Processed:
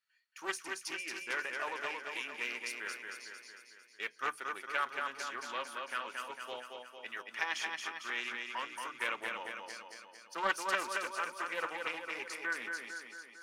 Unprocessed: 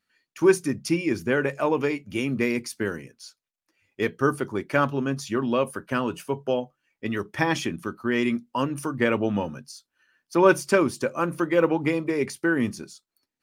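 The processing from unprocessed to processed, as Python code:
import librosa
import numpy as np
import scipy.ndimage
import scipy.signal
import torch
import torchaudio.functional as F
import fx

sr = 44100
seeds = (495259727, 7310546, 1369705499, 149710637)

y = scipy.signal.sosfilt(scipy.signal.butter(2, 1200.0, 'highpass', fs=sr, output='sos'), x)
y = fx.high_shelf(y, sr, hz=8500.0, db=-6.0)
y = fx.echo_feedback(y, sr, ms=226, feedback_pct=58, wet_db=-4)
y = fx.doppler_dist(y, sr, depth_ms=0.2)
y = F.gain(torch.from_numpy(y), -6.5).numpy()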